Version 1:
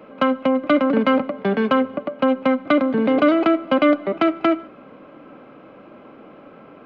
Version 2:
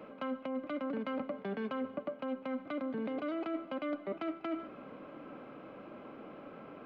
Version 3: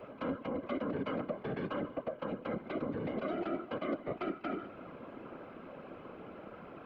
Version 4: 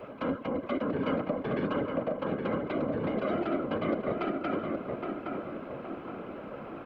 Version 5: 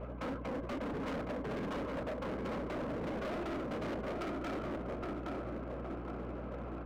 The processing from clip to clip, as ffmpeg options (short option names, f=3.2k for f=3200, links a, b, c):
-af "alimiter=limit=-14dB:level=0:latency=1:release=234,areverse,acompressor=threshold=-29dB:ratio=6,areverse,volume=-5.5dB"
-af "afftfilt=real='hypot(re,im)*cos(2*PI*random(0))':imag='hypot(re,im)*sin(2*PI*random(1))':win_size=512:overlap=0.75,volume=6.5dB"
-filter_complex "[0:a]asplit=2[a][b];[b]adelay=817,lowpass=f=2k:p=1,volume=-3.5dB,asplit=2[c][d];[d]adelay=817,lowpass=f=2k:p=1,volume=0.46,asplit=2[e][f];[f]adelay=817,lowpass=f=2k:p=1,volume=0.46,asplit=2[g][h];[h]adelay=817,lowpass=f=2k:p=1,volume=0.46,asplit=2[i][j];[j]adelay=817,lowpass=f=2k:p=1,volume=0.46,asplit=2[k][l];[l]adelay=817,lowpass=f=2k:p=1,volume=0.46[m];[a][c][e][g][i][k][m]amix=inputs=7:normalize=0,volume=5dB"
-af "aeval=exprs='val(0)+0.00794*(sin(2*PI*60*n/s)+sin(2*PI*2*60*n/s)/2+sin(2*PI*3*60*n/s)/3+sin(2*PI*4*60*n/s)/4+sin(2*PI*5*60*n/s)/5)':c=same,adynamicsmooth=sensitivity=6.5:basefreq=1.9k,asoftclip=type=hard:threshold=-34dB,volume=-2dB"